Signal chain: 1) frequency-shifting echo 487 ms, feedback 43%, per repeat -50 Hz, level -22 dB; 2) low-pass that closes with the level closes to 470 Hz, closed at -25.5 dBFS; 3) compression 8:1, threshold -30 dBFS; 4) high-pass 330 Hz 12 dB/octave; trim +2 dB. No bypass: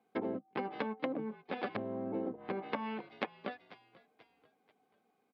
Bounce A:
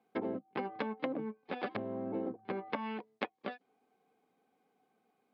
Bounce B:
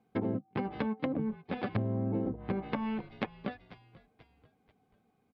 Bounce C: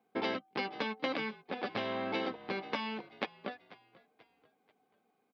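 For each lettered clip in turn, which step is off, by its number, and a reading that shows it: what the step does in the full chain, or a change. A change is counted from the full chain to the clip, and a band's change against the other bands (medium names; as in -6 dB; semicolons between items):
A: 1, momentary loudness spread change -3 LU; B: 4, 125 Hz band +15.0 dB; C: 2, 4 kHz band +10.0 dB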